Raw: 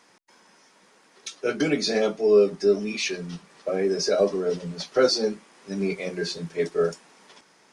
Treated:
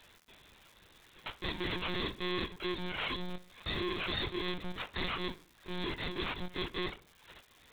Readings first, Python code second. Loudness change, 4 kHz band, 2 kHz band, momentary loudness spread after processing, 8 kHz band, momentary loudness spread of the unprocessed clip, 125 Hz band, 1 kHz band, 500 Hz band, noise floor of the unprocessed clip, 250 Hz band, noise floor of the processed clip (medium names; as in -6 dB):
-12.5 dB, -5.5 dB, -4.5 dB, 12 LU, -27.5 dB, 15 LU, -6.5 dB, -4.5 dB, -20.0 dB, -59 dBFS, -11.5 dB, -64 dBFS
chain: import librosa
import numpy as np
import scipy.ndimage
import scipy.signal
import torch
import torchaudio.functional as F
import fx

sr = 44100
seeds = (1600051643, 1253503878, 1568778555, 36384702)

p1 = fx.bit_reversed(x, sr, seeds[0], block=64)
p2 = fx.dereverb_blind(p1, sr, rt60_s=0.72)
p3 = fx.rider(p2, sr, range_db=10, speed_s=0.5)
p4 = p2 + F.gain(torch.from_numpy(p3), -2.5).numpy()
p5 = (np.kron(p4[::6], np.eye(6)[0]) * 6)[:len(p4)]
p6 = 10.0 ** (-11.0 / 20.0) * np.tanh(p5 / 10.0 ** (-11.0 / 20.0))
p7 = p6 + fx.echo_filtered(p6, sr, ms=64, feedback_pct=42, hz=2000.0, wet_db=-15.5, dry=0)
p8 = fx.lpc_monotone(p7, sr, seeds[1], pitch_hz=180.0, order=16)
p9 = fx.dmg_crackle(p8, sr, seeds[2], per_s=270.0, level_db=-41.0)
y = F.gain(torch.from_numpy(p9), -7.0).numpy()